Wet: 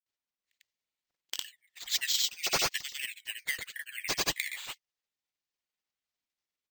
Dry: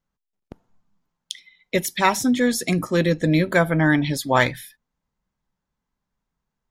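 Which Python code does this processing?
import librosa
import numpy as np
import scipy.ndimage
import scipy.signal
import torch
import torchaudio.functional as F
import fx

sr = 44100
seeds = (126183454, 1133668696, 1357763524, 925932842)

y = fx.pitch_ramps(x, sr, semitones=-11.0, every_ms=319)
y = scipy.signal.sosfilt(scipy.signal.butter(16, 1800.0, 'highpass', fs=sr, output='sos'), y)
y = fx.high_shelf(y, sr, hz=3900.0, db=8.5)
y = 10.0 ** (-13.0 / 20.0) * np.tanh(y / 10.0 ** (-13.0 / 20.0))
y = fx.granulator(y, sr, seeds[0], grain_ms=100.0, per_s=20.0, spray_ms=100.0, spread_st=0)
y = np.repeat(y[::4], 4)[:len(y)]
y = F.gain(torch.from_numpy(y), -3.0).numpy()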